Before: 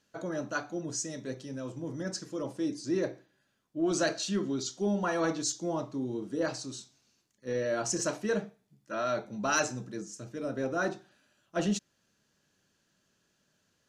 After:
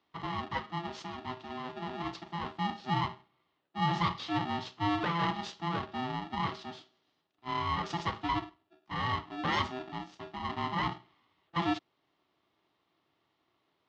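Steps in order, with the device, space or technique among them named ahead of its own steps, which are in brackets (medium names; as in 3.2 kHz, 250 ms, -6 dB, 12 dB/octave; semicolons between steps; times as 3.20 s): ring modulator pedal into a guitar cabinet (polarity switched at an audio rate 510 Hz; cabinet simulation 110–3500 Hz, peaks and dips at 220 Hz -5 dB, 710 Hz -6 dB, 1.6 kHz -5 dB, 2.3 kHz -7 dB); trim +1.5 dB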